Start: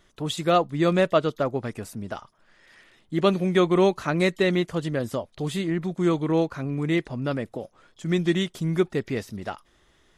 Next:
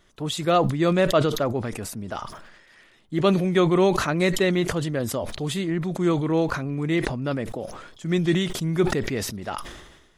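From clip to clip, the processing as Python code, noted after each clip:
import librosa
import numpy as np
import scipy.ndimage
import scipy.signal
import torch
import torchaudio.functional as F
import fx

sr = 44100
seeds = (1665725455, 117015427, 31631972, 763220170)

y = fx.sustainer(x, sr, db_per_s=51.0)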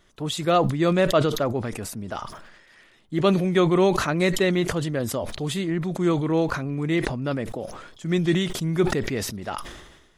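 y = x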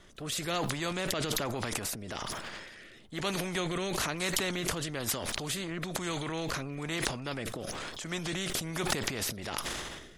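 y = fx.transient(x, sr, attack_db=-1, sustain_db=8)
y = fx.rotary(y, sr, hz=1.1)
y = fx.spectral_comp(y, sr, ratio=2.0)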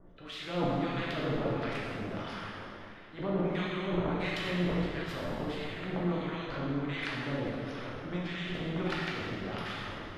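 y = fx.harmonic_tremolo(x, sr, hz=1.5, depth_pct=100, crossover_hz=1100.0)
y = fx.air_absorb(y, sr, metres=350.0)
y = fx.rev_plate(y, sr, seeds[0], rt60_s=2.5, hf_ratio=0.8, predelay_ms=0, drr_db=-5.5)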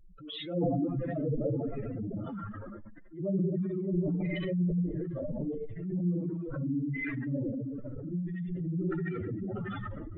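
y = fx.spec_expand(x, sr, power=3.7)
y = F.gain(torch.from_numpy(y), 2.5).numpy()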